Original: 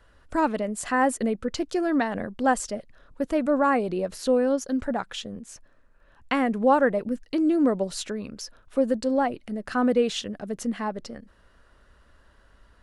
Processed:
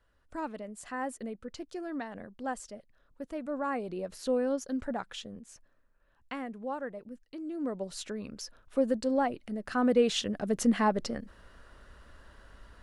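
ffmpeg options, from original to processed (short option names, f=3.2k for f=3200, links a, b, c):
-af "volume=13.5dB,afade=t=in:st=3.43:d=0.94:silence=0.473151,afade=t=out:st=5.13:d=1.5:silence=0.316228,afade=t=in:st=7.48:d=0.86:silence=0.237137,afade=t=in:st=9.82:d=0.91:silence=0.398107"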